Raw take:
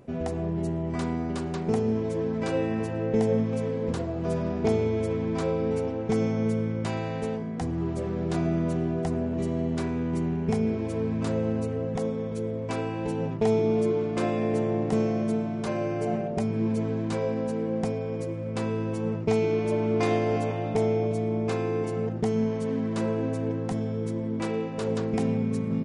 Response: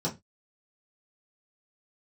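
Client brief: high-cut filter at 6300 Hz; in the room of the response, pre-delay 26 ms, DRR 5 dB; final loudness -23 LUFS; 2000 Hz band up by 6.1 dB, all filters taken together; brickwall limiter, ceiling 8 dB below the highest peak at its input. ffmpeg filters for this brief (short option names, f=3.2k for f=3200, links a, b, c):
-filter_complex "[0:a]lowpass=6.3k,equalizer=f=2k:t=o:g=7.5,alimiter=limit=-19dB:level=0:latency=1,asplit=2[a][b];[1:a]atrim=start_sample=2205,adelay=26[c];[b][c]afir=irnorm=-1:irlink=0,volume=-11.5dB[d];[a][d]amix=inputs=2:normalize=0,volume=0.5dB"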